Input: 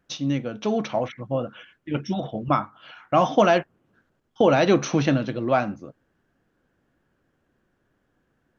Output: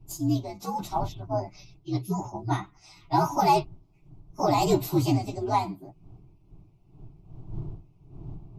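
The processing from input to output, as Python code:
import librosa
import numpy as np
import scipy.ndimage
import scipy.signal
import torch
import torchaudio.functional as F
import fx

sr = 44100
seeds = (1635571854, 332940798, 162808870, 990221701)

y = fx.partial_stretch(x, sr, pct=123)
y = fx.dmg_wind(y, sr, seeds[0], corner_hz=110.0, level_db=-42.0)
y = fx.fixed_phaser(y, sr, hz=340.0, stages=8)
y = F.gain(torch.from_numpy(y), 1.5).numpy()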